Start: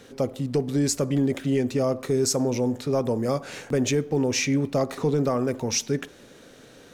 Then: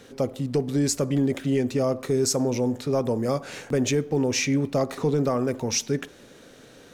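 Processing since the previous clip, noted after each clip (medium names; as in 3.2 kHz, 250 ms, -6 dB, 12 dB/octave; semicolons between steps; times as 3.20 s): no audible change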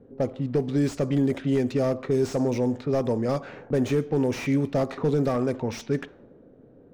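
level-controlled noise filter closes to 410 Hz, open at -18.5 dBFS; slew-rate limiter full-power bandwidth 59 Hz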